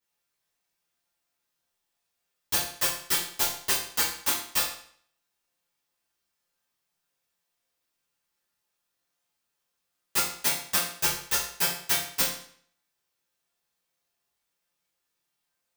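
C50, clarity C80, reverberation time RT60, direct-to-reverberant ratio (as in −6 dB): 4.0 dB, 8.0 dB, 0.55 s, −11.5 dB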